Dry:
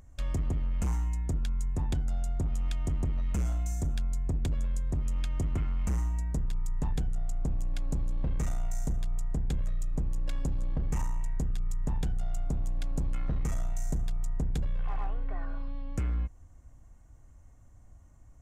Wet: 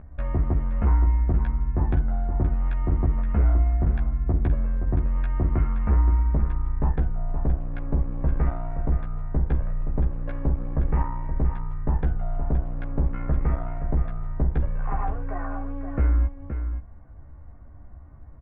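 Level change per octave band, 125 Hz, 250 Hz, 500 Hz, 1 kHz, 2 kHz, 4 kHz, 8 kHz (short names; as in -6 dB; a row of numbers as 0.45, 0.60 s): +8.0 dB, +7.5 dB, +9.5 dB, +11.0 dB, +7.0 dB, under -10 dB, under -35 dB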